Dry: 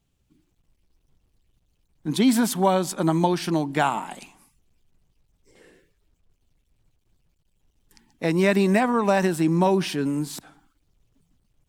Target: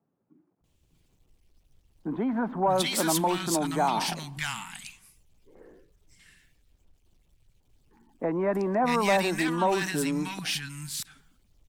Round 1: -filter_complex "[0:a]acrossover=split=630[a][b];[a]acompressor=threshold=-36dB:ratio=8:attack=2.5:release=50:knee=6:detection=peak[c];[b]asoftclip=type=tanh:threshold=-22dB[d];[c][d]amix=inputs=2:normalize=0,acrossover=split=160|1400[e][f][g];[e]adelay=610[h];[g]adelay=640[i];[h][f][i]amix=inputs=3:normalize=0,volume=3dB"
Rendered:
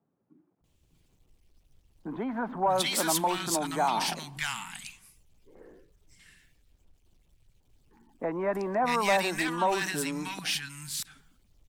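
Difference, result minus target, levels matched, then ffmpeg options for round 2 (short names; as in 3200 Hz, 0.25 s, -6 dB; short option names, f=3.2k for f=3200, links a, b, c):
compressor: peak gain reduction +6.5 dB
-filter_complex "[0:a]acrossover=split=630[a][b];[a]acompressor=threshold=-28.5dB:ratio=8:attack=2.5:release=50:knee=6:detection=peak[c];[b]asoftclip=type=tanh:threshold=-22dB[d];[c][d]amix=inputs=2:normalize=0,acrossover=split=160|1400[e][f][g];[e]adelay=610[h];[g]adelay=640[i];[h][f][i]amix=inputs=3:normalize=0,volume=3dB"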